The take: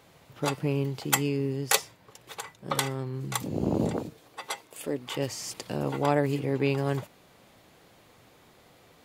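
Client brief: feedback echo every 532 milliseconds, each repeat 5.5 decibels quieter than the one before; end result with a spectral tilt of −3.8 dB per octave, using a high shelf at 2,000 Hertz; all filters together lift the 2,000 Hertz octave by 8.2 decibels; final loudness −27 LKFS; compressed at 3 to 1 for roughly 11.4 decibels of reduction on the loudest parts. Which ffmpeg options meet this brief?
ffmpeg -i in.wav -af "highshelf=frequency=2000:gain=9,equalizer=frequency=2000:width_type=o:gain=4.5,acompressor=threshold=-26dB:ratio=3,aecho=1:1:532|1064|1596|2128|2660|3192|3724:0.531|0.281|0.149|0.079|0.0419|0.0222|0.0118,volume=3dB" out.wav

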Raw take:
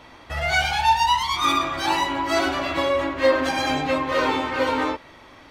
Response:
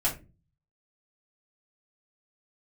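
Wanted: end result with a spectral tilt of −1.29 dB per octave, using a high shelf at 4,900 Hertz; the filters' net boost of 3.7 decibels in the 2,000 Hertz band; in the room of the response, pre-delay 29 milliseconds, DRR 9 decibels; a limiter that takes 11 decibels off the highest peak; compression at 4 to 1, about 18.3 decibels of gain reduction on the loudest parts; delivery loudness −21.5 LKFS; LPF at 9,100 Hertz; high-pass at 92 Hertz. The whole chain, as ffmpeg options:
-filter_complex "[0:a]highpass=92,lowpass=9100,equalizer=frequency=2000:width_type=o:gain=6,highshelf=frequency=4900:gain=-8,acompressor=threshold=-36dB:ratio=4,alimiter=level_in=10dB:limit=-24dB:level=0:latency=1,volume=-10dB,asplit=2[link_01][link_02];[1:a]atrim=start_sample=2205,adelay=29[link_03];[link_02][link_03]afir=irnorm=-1:irlink=0,volume=-17.5dB[link_04];[link_01][link_04]amix=inputs=2:normalize=0,volume=19.5dB"

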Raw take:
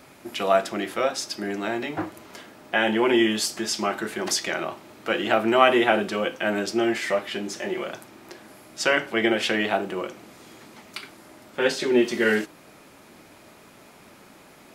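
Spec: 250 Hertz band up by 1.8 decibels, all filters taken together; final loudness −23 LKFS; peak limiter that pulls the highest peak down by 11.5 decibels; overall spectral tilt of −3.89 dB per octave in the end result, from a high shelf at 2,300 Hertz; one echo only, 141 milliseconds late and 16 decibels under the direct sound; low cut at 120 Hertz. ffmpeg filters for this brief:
ffmpeg -i in.wav -af "highpass=120,equalizer=frequency=250:width_type=o:gain=3,highshelf=frequency=2300:gain=-4,alimiter=limit=-14dB:level=0:latency=1,aecho=1:1:141:0.158,volume=3.5dB" out.wav

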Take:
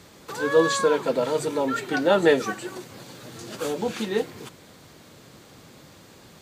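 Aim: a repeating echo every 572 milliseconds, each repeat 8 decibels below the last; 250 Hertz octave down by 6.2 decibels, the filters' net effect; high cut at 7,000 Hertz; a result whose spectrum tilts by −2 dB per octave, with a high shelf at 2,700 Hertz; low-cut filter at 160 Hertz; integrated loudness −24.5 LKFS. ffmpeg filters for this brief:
ffmpeg -i in.wav -af "highpass=160,lowpass=7000,equalizer=frequency=250:width_type=o:gain=-8,highshelf=frequency=2700:gain=8.5,aecho=1:1:572|1144|1716|2288|2860:0.398|0.159|0.0637|0.0255|0.0102" out.wav

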